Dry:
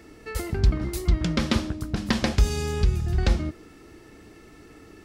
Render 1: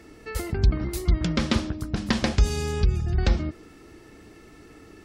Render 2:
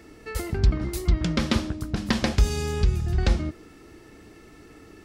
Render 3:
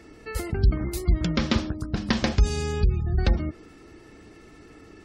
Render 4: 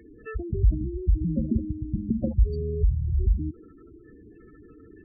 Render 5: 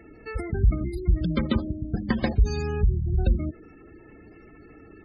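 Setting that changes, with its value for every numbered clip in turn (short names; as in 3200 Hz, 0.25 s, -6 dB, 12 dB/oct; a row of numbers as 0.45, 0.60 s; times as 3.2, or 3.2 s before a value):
spectral gate, under each frame's peak: -45, -60, -35, -10, -20 dB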